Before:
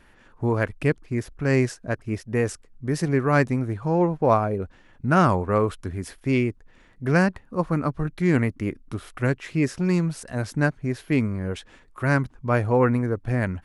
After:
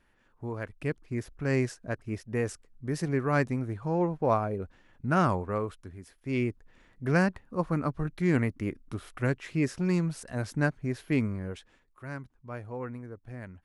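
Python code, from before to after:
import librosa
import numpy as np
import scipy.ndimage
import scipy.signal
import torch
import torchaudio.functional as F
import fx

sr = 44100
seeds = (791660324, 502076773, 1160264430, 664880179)

y = fx.gain(x, sr, db=fx.line((0.62, -13.0), (1.13, -6.5), (5.31, -6.5), (6.14, -16.5), (6.43, -5.0), (11.3, -5.0), (12.04, -18.0)))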